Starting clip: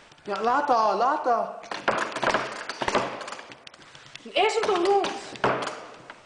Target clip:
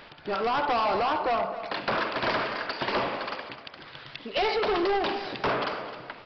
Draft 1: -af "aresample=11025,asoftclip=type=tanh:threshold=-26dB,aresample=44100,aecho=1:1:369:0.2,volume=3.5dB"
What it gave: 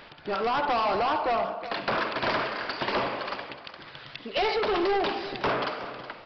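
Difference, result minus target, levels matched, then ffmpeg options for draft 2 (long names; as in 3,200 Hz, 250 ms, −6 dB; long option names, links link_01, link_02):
echo 109 ms late
-af "aresample=11025,asoftclip=type=tanh:threshold=-26dB,aresample=44100,aecho=1:1:260:0.2,volume=3.5dB"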